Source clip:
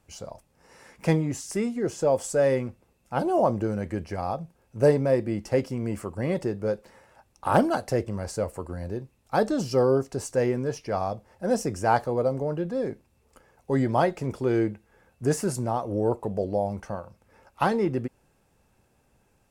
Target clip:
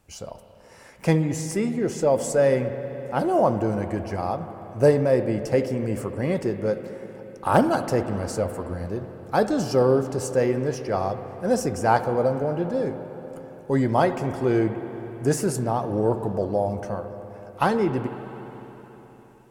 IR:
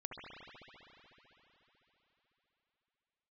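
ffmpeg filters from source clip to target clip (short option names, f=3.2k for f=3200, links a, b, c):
-filter_complex "[0:a]asplit=2[a][b];[1:a]atrim=start_sample=2205,highshelf=f=11k:g=11[c];[b][c]afir=irnorm=-1:irlink=0,volume=-5dB[d];[a][d]amix=inputs=2:normalize=0"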